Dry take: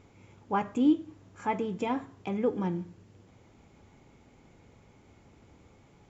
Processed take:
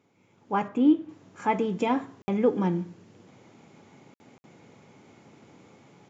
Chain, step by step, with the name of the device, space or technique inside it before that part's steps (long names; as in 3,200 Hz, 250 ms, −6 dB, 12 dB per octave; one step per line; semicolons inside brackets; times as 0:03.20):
call with lost packets (high-pass filter 130 Hz 24 dB per octave; downsampling to 16,000 Hz; automatic gain control gain up to 14 dB; dropped packets of 60 ms random)
0:00.68–0:01.09: bass and treble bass −2 dB, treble −14 dB
level −8 dB